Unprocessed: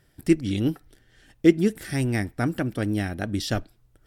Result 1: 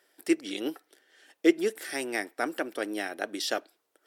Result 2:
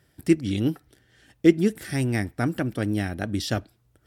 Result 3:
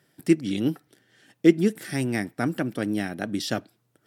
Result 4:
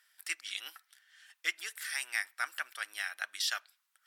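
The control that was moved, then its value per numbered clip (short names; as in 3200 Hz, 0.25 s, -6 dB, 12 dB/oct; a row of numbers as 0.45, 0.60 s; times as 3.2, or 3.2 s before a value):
HPF, cutoff: 370, 53, 140, 1200 Hz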